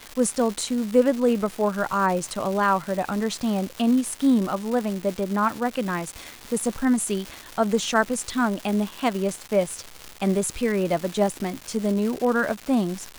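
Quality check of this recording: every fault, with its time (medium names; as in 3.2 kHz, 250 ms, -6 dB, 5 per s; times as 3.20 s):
crackle 450 per s -28 dBFS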